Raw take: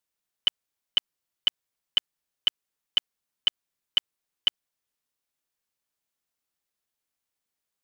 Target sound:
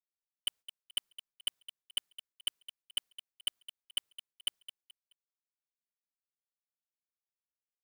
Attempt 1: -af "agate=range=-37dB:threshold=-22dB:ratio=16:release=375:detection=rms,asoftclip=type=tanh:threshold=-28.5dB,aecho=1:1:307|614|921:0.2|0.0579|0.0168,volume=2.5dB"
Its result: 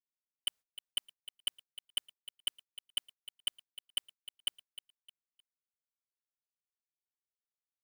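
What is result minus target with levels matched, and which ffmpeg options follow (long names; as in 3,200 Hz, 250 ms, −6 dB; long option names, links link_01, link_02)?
echo 93 ms late
-af "agate=range=-37dB:threshold=-22dB:ratio=16:release=375:detection=rms,asoftclip=type=tanh:threshold=-28.5dB,aecho=1:1:214|428|642:0.2|0.0579|0.0168,volume=2.5dB"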